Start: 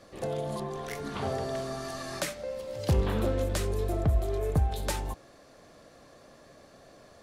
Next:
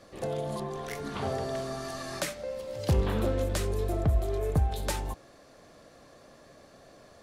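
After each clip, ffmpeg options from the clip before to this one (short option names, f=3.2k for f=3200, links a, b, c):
-af anull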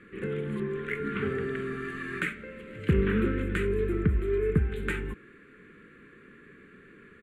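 -af "firequalizer=gain_entry='entry(120,0);entry(190,10);entry(280,4);entry(420,9);entry(630,-27);entry(1400,10);entry(2300,10);entry(5300,-30);entry(7500,-11);entry(14000,-17)':delay=0.05:min_phase=1,volume=-1.5dB"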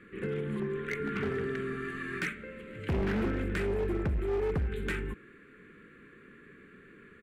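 -af "asoftclip=type=hard:threshold=-25dB,volume=-1.5dB"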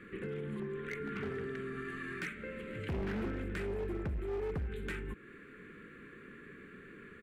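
-af "alimiter=level_in=11dB:limit=-24dB:level=0:latency=1:release=200,volume=-11dB,volume=2dB"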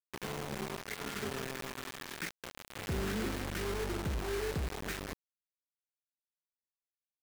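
-af "acrusher=bits=5:mix=0:aa=0.000001,volume=-1.5dB"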